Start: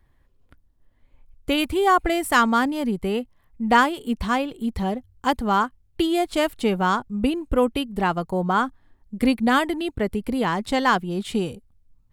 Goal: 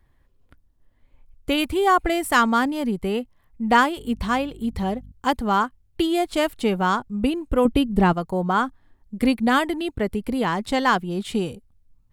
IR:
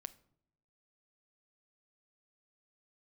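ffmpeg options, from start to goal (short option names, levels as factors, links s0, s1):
-filter_complex "[0:a]asettb=1/sr,asplit=3[s0][s1][s2];[s0]atrim=end=3.974[s3];[s1]atrim=start=3.97:end=5.12,asetpts=PTS-STARTPTS,afade=t=in:d=0.004:c=qsin,afade=t=out:st=1.146:d=0.004:c=qsin,aeval=exprs='val(0)+0.00794*(sin(2*PI*50*n/s)+sin(2*PI*2*50*n/s)/2+sin(2*PI*3*50*n/s)/3+sin(2*PI*4*50*n/s)/4+sin(2*PI*5*50*n/s)/5)':c=same[s4];[s2]atrim=start=5.116[s5];[s3][s4]acrossfade=d=0.004:c1=hsin:c2=qsin[s6];[s6][s5]acrossfade=d=0.004:c1=qsin:c2=hsin,asettb=1/sr,asplit=3[s7][s8][s9];[s7]atrim=end=7.654[s10];[s8]atrim=start=7.65:end=8.13,asetpts=PTS-STARTPTS,afade=t=in:d=0.004:c=qsin,afade=t=out:st=0.476:d=0.004:c=qsin,lowshelf=f=380:g=11[s11];[s9]atrim=start=8.126[s12];[s10][s11]acrossfade=d=0.004:c1=hsin:c2=qsin[s13];[s13][s12]acrossfade=d=0.004:c1=qsin:c2=hsin"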